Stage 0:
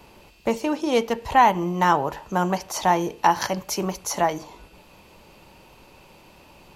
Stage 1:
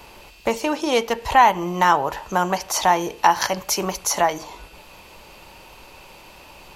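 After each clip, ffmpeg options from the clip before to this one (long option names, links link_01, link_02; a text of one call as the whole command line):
ffmpeg -i in.wav -filter_complex "[0:a]equalizer=frequency=180:width=0.45:gain=-8.5,asplit=2[link_01][link_02];[link_02]acompressor=threshold=-29dB:ratio=6,volume=-1dB[link_03];[link_01][link_03]amix=inputs=2:normalize=0,volume=2.5dB" out.wav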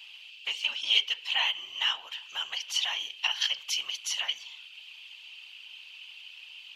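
ffmpeg -i in.wav -af "highpass=frequency=3000:width_type=q:width=8.3,afftfilt=real='hypot(re,im)*cos(2*PI*random(0))':imag='hypot(re,im)*sin(2*PI*random(1))':win_size=512:overlap=0.75,aemphasis=mode=reproduction:type=bsi" out.wav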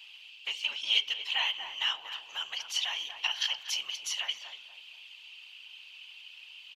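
ffmpeg -i in.wav -filter_complex "[0:a]asplit=2[link_01][link_02];[link_02]adelay=239,lowpass=frequency=1100:poles=1,volume=-5.5dB,asplit=2[link_03][link_04];[link_04]adelay=239,lowpass=frequency=1100:poles=1,volume=0.39,asplit=2[link_05][link_06];[link_06]adelay=239,lowpass=frequency=1100:poles=1,volume=0.39,asplit=2[link_07][link_08];[link_08]adelay=239,lowpass=frequency=1100:poles=1,volume=0.39,asplit=2[link_09][link_10];[link_10]adelay=239,lowpass=frequency=1100:poles=1,volume=0.39[link_11];[link_01][link_03][link_05][link_07][link_09][link_11]amix=inputs=6:normalize=0,volume=-2.5dB" out.wav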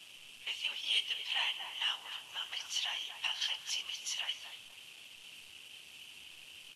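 ffmpeg -i in.wav -af "asoftclip=type=tanh:threshold=-19dB,acrusher=bits=9:dc=4:mix=0:aa=0.000001,volume=-4dB" -ar 32000 -c:a libvorbis -b:a 32k out.ogg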